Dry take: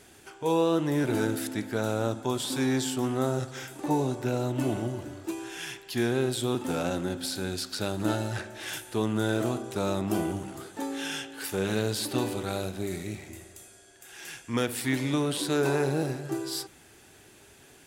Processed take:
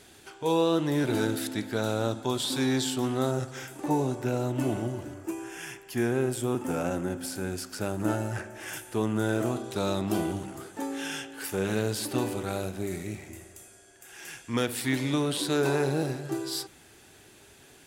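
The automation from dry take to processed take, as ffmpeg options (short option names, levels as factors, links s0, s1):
-af "asetnsamples=n=441:p=0,asendcmd='3.31 equalizer g -4;5.14 equalizer g -14.5;8.76 equalizer g -7;9.56 equalizer g 4;10.46 equalizer g -5;14.4 equalizer g 2',equalizer=f=3900:t=o:w=0.53:g=5"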